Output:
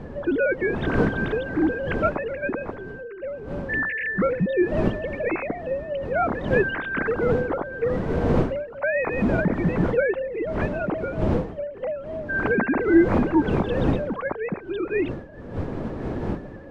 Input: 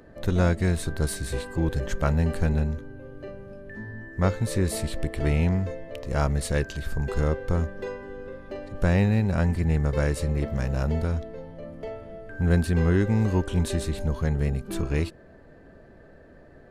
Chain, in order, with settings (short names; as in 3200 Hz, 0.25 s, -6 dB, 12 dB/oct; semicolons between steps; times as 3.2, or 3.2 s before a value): sine-wave speech; wind noise 350 Hz -29 dBFS